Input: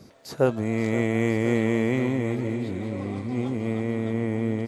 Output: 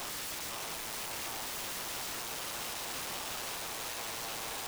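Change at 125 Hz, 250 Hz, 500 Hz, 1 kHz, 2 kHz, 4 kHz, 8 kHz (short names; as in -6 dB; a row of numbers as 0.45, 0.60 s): -27.0, -28.0, -20.5, -3.5, -7.0, +6.5, +11.0 dB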